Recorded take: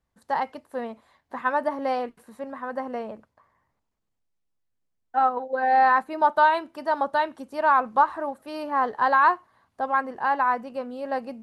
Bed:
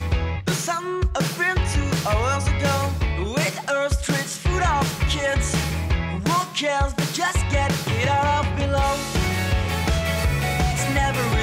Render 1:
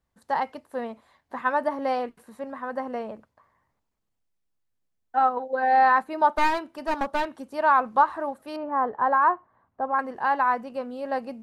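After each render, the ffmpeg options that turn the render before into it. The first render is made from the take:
-filter_complex "[0:a]asettb=1/sr,asplit=3[a][b][c];[a]atrim=end=6.344[d];[b]atrim=start=6.34:end=7.5,asetpts=PTS-STARTPTS,afade=t=in:d=0.004:c=qsin,afade=t=out:st=1.156:d=0.004:c=qsin,aeval=exprs='clip(val(0),-1,0.0316)':c=same[e];[c]atrim=start=7.496[f];[d][e]acrossfade=d=0.004:c1=hsin:c2=qsin[g];[g][f]acrossfade=d=0.004:c1=qsin:c2=hsin,asettb=1/sr,asplit=3[h][i][j];[h]atrim=end=8.564[k];[i]atrim=start=8.56:end=9.99,asetpts=PTS-STARTPTS,afade=t=in:d=0.004:c=qsin,afade=t=out:st=1.426:d=0.004:c=qsin,lowpass=1.3k[l];[j]atrim=start=9.986[m];[k][l]acrossfade=d=0.004:c1=hsin:c2=qsin[n];[n][m]acrossfade=d=0.004:c1=qsin:c2=hsin"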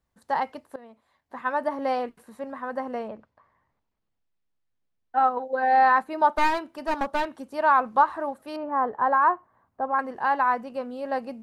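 -filter_complex "[0:a]asettb=1/sr,asplit=3[a][b][c];[a]atrim=end=3.084[d];[b]atrim=start=3.08:end=5.24,asetpts=PTS-STARTPTS,afade=t=in:d=0.004:c=qsin,afade=t=out:st=2.156:d=0.004:c=qsin,lowpass=4.3k[e];[c]atrim=start=5.236[f];[d][e]acrossfade=d=0.004:c1=hsin:c2=qsin[g];[g][f]acrossfade=d=0.004:c1=qsin:c2=hsin,asplit=2[h][i];[h]atrim=end=0.76,asetpts=PTS-STARTPTS,afade=t=out:st=0.756:d=0.004:c=hsin:silence=0.112202[j];[i]atrim=start=0.76,asetpts=PTS-STARTPTS,afade=t=in:d=1.05:silence=0.112202[k];[j][k]concat=n=2:v=0:a=1"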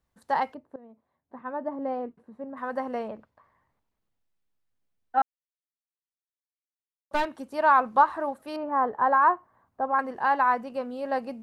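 -filter_complex "[0:a]asplit=3[a][b][c];[a]afade=t=out:st=0.53:d=0.02[d];[b]bandpass=f=200:t=q:w=0.55,afade=t=in:st=0.53:d=0.02,afade=t=out:st=2.56:d=0.02[e];[c]afade=t=in:st=2.56:d=0.02[f];[d][e][f]amix=inputs=3:normalize=0,asplit=3[g][h][i];[g]atrim=end=5.22,asetpts=PTS-STARTPTS,afade=t=out:st=5.216:d=0.004:c=hsin[j];[h]atrim=start=5.22:end=7.11,asetpts=PTS-STARTPTS,volume=0[k];[i]atrim=start=7.11,asetpts=PTS-STARTPTS,afade=t=in:d=0.004:c=hsin[l];[j][k][l]concat=n=3:v=0:a=1"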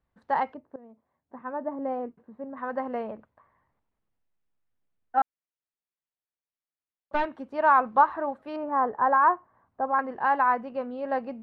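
-af "lowpass=2.6k"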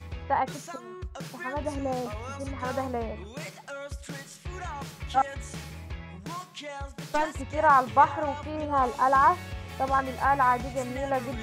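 -filter_complex "[1:a]volume=-16.5dB[a];[0:a][a]amix=inputs=2:normalize=0"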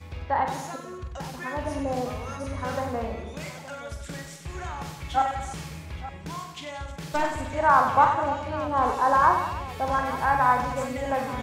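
-af "aecho=1:1:44|94|177|232|310|872:0.473|0.398|0.237|0.15|0.141|0.168"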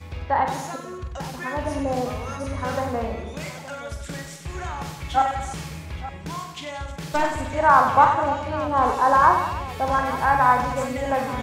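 -af "volume=3.5dB"

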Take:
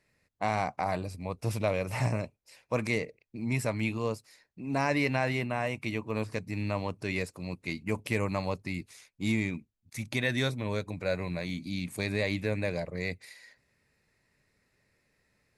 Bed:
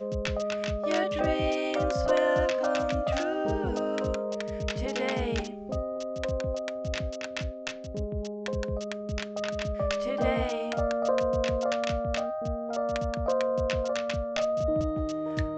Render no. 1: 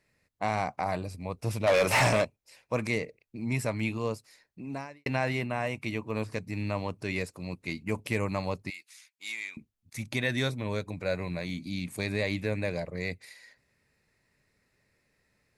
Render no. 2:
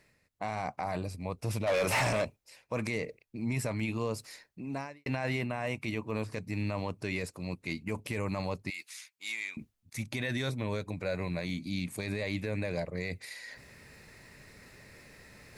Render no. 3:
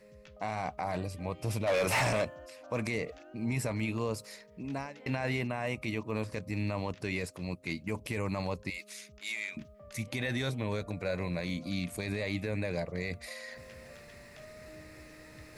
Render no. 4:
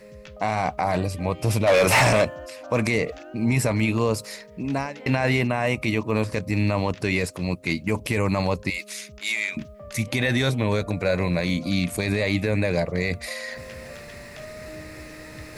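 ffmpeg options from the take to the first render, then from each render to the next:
-filter_complex "[0:a]asplit=3[a][b][c];[a]afade=t=out:st=1.66:d=0.02[d];[b]asplit=2[e][f];[f]highpass=f=720:p=1,volume=25dB,asoftclip=type=tanh:threshold=-14dB[g];[e][g]amix=inputs=2:normalize=0,lowpass=f=7k:p=1,volume=-6dB,afade=t=in:st=1.66:d=0.02,afade=t=out:st=2.23:d=0.02[h];[c]afade=t=in:st=2.23:d=0.02[i];[d][h][i]amix=inputs=3:normalize=0,asettb=1/sr,asplit=3[j][k][l];[j]atrim=end=8.704[m];[k]atrim=start=8.7:end=9.57,asetpts=PTS-STARTPTS,afade=t=in:d=0.004:c=qsin,afade=t=out:st=0.866:d=0.004:c=qsin,highpass=1.5k[n];[l]atrim=start=9.566[o];[m][n]acrossfade=d=0.004:c1=hsin:c2=qsin[p];[p][o]acrossfade=d=0.004:c1=qsin:c2=hsin,asplit=2[q][r];[q]atrim=end=5.06,asetpts=PTS-STARTPTS,afade=t=out:st=4.61:d=0.45:c=qua[s];[r]atrim=start=5.06,asetpts=PTS-STARTPTS,afade=t=in:d=0.004:c=hsin[t];[s][t]concat=n=2:v=0:a=1"
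-af "areverse,acompressor=mode=upward:threshold=-37dB:ratio=2.5,areverse,alimiter=limit=-22.5dB:level=0:latency=1:release=16"
-filter_complex "[1:a]volume=-24dB[a];[0:a][a]amix=inputs=2:normalize=0"
-af "volume=11dB"

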